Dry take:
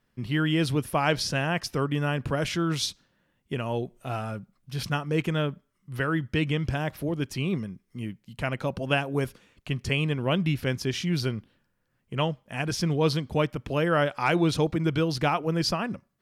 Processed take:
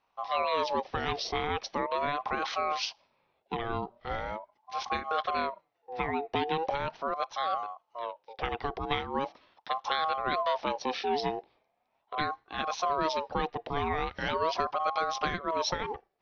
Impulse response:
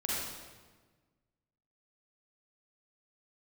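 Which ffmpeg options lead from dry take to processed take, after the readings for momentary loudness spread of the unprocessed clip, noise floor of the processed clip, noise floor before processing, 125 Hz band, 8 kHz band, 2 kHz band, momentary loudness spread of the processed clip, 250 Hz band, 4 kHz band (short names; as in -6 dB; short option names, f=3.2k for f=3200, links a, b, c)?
10 LU, -76 dBFS, -73 dBFS, -17.5 dB, -8.0 dB, -5.0 dB, 9 LU, -12.5 dB, -4.0 dB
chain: -filter_complex "[0:a]aresample=11025,aresample=44100,acrossover=split=210|3000[a][b][c];[b]acompressor=threshold=-27dB:ratio=6[d];[a][d][c]amix=inputs=3:normalize=0,aeval=exprs='val(0)*sin(2*PI*760*n/s+760*0.25/0.4*sin(2*PI*0.4*n/s))':c=same"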